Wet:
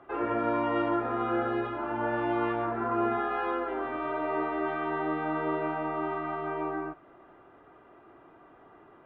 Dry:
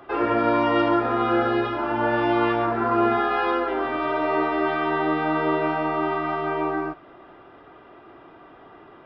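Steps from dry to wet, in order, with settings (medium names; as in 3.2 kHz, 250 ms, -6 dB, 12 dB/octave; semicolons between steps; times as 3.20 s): low-pass 2.4 kHz 12 dB/octave; trim -7.5 dB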